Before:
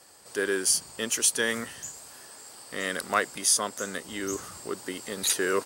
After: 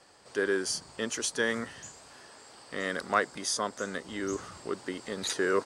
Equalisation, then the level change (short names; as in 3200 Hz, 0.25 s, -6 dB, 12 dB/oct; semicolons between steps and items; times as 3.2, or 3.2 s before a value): dynamic EQ 2700 Hz, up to -6 dB, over -46 dBFS, Q 2.2; air absorption 97 m; 0.0 dB